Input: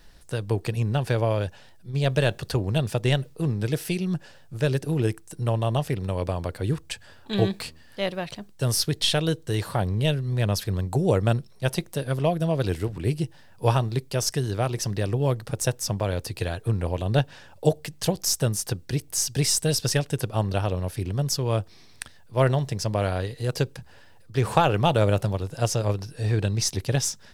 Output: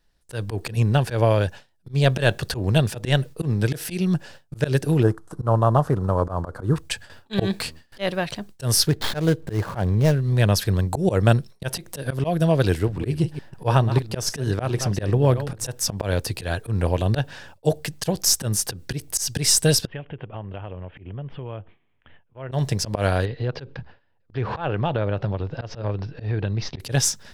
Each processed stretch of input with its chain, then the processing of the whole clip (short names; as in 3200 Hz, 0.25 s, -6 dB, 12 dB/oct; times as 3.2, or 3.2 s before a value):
5.03–6.76 CVSD 64 kbps + resonant high shelf 1700 Hz -11 dB, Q 3
8.87–10.34 median filter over 15 samples + upward compressor, threshold -30 dBFS
12.79–15.7 reverse delay 0.15 s, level -12 dB + high shelf 3400 Hz -6.5 dB
19.86–22.52 Chebyshev low-pass 3200 Hz, order 6 + compressor 3:1, threshold -40 dBFS
23.25–26.8 Bessel low-pass 2700 Hz, order 8 + compressor 3:1, threshold -27 dBFS
whole clip: gate with hold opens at -37 dBFS; dynamic EQ 1600 Hz, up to +4 dB, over -51 dBFS, Q 5.4; auto swell 0.107 s; gain +5.5 dB